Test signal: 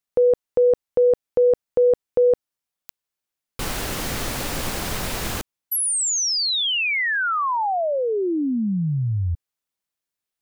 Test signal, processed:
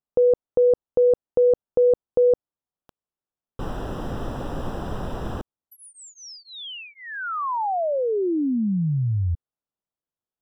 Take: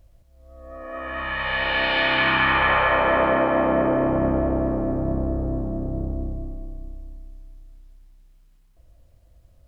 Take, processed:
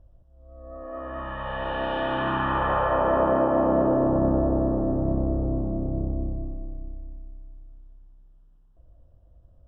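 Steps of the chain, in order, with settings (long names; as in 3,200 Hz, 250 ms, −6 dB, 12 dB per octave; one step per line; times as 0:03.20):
moving average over 20 samples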